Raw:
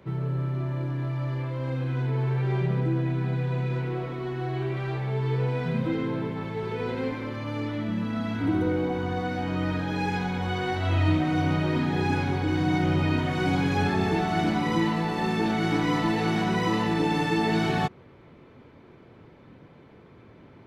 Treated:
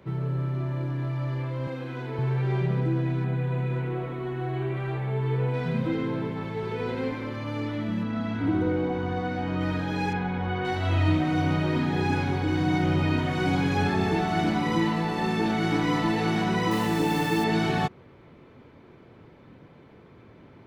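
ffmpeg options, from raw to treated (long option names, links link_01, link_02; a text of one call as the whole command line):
ffmpeg -i in.wav -filter_complex "[0:a]asettb=1/sr,asplit=3[link_01][link_02][link_03];[link_01]atrim=end=1.674[link_04];[link_02]atrim=start=1.67:end=2.19,asetpts=PTS-STARTPTS,afade=type=in:duration=0.004:curve=qsin,afade=type=out:start_time=0.516:duration=0.004:curve=qsin,highpass=220[link_05];[link_03]atrim=start=2.186[link_06];[link_04][link_05]acrossfade=duration=0.004:curve1=hsin:curve2=qsin[link_07];[link_07][link_06]acrossfade=duration=0.004:curve1=qsin:curve2=hsin,asettb=1/sr,asplit=3[link_08][link_09][link_10];[link_08]atrim=end=3.244[link_11];[link_09]atrim=start=3.24:end=5.54,asetpts=PTS-STARTPTS,afade=type=in:duration=0.004:curve=qsin,afade=type=out:start_time=2.296:duration=0.004:curve=qsin,equalizer=frequency=5100:width=1.7:gain=-11[link_12];[link_10]atrim=start=5.536[link_13];[link_11][link_12]acrossfade=duration=0.004:curve1=hsin:curve2=qsin[link_14];[link_14][link_13]acrossfade=duration=0.004:curve1=qsin:curve2=hsin,asettb=1/sr,asplit=3[link_15][link_16][link_17];[link_15]atrim=end=8.034[link_18];[link_16]atrim=start=8.03:end=9.61,asetpts=PTS-STARTPTS,afade=type=in:duration=0.004:curve=qsin,afade=type=out:start_time=1.576:duration=0.004:curve=qsin,lowpass=frequency=3800:poles=1[link_19];[link_17]atrim=start=9.606[link_20];[link_18][link_19]acrossfade=duration=0.004:curve1=hsin:curve2=qsin[link_21];[link_21][link_20]acrossfade=duration=0.004:curve1=qsin:curve2=hsin,asettb=1/sr,asplit=3[link_22][link_23][link_24];[link_22]atrim=end=10.134[link_25];[link_23]atrim=start=10.13:end=10.65,asetpts=PTS-STARTPTS,afade=type=in:duration=0.004:curve=qsin,afade=type=out:start_time=0.516:duration=0.004:curve=qsin,lowpass=2500[link_26];[link_24]atrim=start=10.646[link_27];[link_25][link_26]acrossfade=duration=0.004:curve1=hsin:curve2=qsin[link_28];[link_28][link_27]acrossfade=duration=0.004:curve1=qsin:curve2=hsin,asettb=1/sr,asplit=3[link_29][link_30][link_31];[link_29]atrim=end=16.714[link_32];[link_30]atrim=start=16.71:end=17.44,asetpts=PTS-STARTPTS,afade=type=in:duration=0.004:curve=qsin,afade=type=out:start_time=0.726:duration=0.004:curve=qsin,acrusher=bits=5:mix=0:aa=0.5[link_33];[link_31]atrim=start=17.436[link_34];[link_32][link_33]acrossfade=duration=0.004:curve1=hsin:curve2=qsin[link_35];[link_35][link_34]acrossfade=duration=0.004:curve1=qsin:curve2=hsin" out.wav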